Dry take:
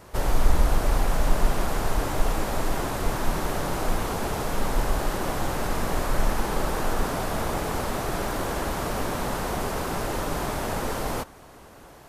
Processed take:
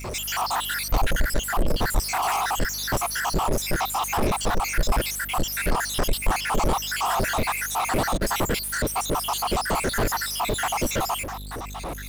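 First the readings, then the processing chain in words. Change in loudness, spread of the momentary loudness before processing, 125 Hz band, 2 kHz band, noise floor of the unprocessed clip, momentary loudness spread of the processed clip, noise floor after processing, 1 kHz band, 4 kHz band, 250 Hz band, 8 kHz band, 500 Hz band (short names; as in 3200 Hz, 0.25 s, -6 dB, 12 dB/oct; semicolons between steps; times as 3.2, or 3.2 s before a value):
+3.0 dB, 3 LU, -0.5 dB, +6.0 dB, -48 dBFS, 2 LU, -34 dBFS, +4.0 dB, +7.5 dB, 0.0 dB, +7.5 dB, 0.0 dB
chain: random spectral dropouts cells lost 77%; hum 50 Hz, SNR 29 dB; power-law curve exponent 0.5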